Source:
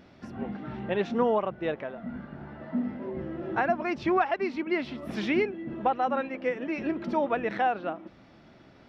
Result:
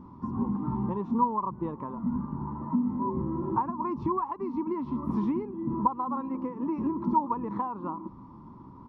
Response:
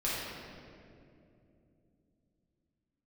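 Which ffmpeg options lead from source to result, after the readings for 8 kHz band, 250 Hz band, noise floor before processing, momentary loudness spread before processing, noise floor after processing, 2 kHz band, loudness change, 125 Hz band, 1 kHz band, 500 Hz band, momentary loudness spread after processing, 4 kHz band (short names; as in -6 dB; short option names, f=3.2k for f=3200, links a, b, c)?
n/a, +2.5 dB, -55 dBFS, 11 LU, -48 dBFS, under -20 dB, -1.0 dB, +6.0 dB, +0.5 dB, -8.0 dB, 9 LU, under -20 dB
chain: -af "acompressor=threshold=-31dB:ratio=10,firequalizer=gain_entry='entry(260,0);entry(680,-23);entry(980,12);entry(1500,-24);entry(2600,-29);entry(7900,-23)':delay=0.05:min_phase=1,volume=8.5dB"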